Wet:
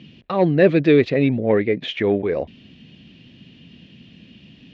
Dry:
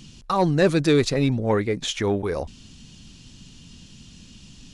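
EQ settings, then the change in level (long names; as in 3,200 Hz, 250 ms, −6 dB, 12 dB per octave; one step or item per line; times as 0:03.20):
Bessel high-pass filter 180 Hz, order 2
low-pass filter 2,900 Hz 24 dB per octave
flat-topped bell 1,100 Hz −9.5 dB 1.1 octaves
+5.5 dB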